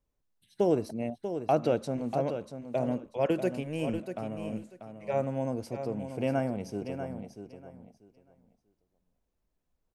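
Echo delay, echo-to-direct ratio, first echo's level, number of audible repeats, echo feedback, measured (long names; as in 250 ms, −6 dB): 640 ms, −9.0 dB, −9.0 dB, 2, 19%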